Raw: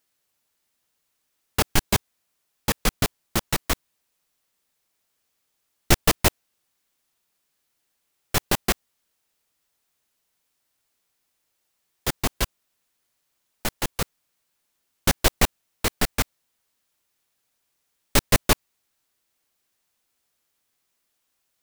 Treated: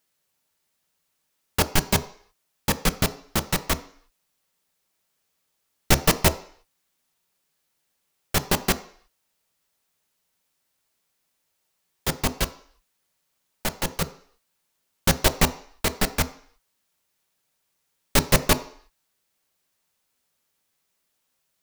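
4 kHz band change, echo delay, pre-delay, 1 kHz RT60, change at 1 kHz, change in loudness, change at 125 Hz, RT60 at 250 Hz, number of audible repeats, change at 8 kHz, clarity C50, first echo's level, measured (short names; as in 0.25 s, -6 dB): 0.0 dB, none, 3 ms, 0.55 s, +0.5 dB, +0.5 dB, +1.5 dB, 0.50 s, none, 0.0 dB, 16.0 dB, none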